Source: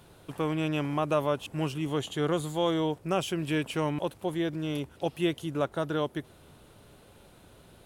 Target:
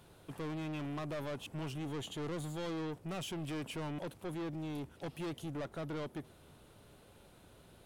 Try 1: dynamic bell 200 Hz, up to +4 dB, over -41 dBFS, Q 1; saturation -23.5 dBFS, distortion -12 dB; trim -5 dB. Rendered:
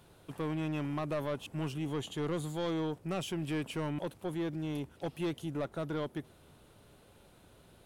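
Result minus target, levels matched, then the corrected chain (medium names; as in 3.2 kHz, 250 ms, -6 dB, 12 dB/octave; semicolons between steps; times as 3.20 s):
saturation: distortion -6 dB
dynamic bell 200 Hz, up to +4 dB, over -41 dBFS, Q 1; saturation -32 dBFS, distortion -6 dB; trim -5 dB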